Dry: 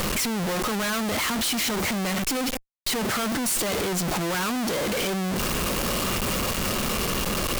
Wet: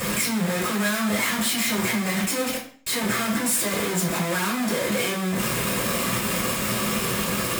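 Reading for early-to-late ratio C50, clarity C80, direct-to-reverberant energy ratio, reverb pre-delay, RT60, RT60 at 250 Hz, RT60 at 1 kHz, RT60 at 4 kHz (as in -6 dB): 7.0 dB, 11.5 dB, -7.5 dB, 3 ms, 0.45 s, 0.50 s, 0.45 s, 0.45 s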